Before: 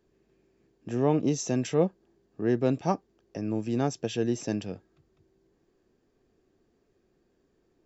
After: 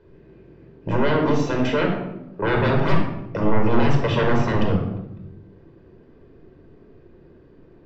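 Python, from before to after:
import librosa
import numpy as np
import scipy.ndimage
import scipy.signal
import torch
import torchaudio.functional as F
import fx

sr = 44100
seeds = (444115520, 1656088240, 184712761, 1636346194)

y = fx.highpass(x, sr, hz=570.0, slope=6, at=(0.96, 2.42))
y = fx.fold_sine(y, sr, drive_db=19, ceiling_db=-11.0)
y = fx.air_absorb(y, sr, metres=340.0)
y = fx.room_shoebox(y, sr, seeds[0], volume_m3=3100.0, walls='furnished', distance_m=4.9)
y = y * librosa.db_to_amplitude(-8.5)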